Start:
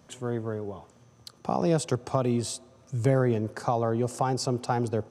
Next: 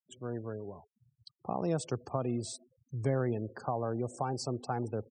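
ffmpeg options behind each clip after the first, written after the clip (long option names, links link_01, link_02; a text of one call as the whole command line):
ffmpeg -i in.wav -af "afftfilt=real='re*gte(hypot(re,im),0.0126)':imag='im*gte(hypot(re,im),0.0126)':win_size=1024:overlap=0.75,volume=-7.5dB" out.wav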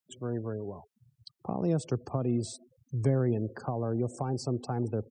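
ffmpeg -i in.wav -filter_complex "[0:a]acrossover=split=440[link_01][link_02];[link_02]acompressor=threshold=-50dB:ratio=2[link_03];[link_01][link_03]amix=inputs=2:normalize=0,volume=5.5dB" out.wav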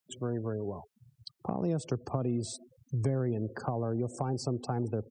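ffmpeg -i in.wav -af "acompressor=threshold=-33dB:ratio=2.5,volume=3.5dB" out.wav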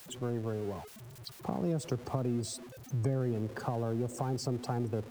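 ffmpeg -i in.wav -af "aeval=exprs='val(0)+0.5*0.0075*sgn(val(0))':channel_layout=same,volume=-2dB" out.wav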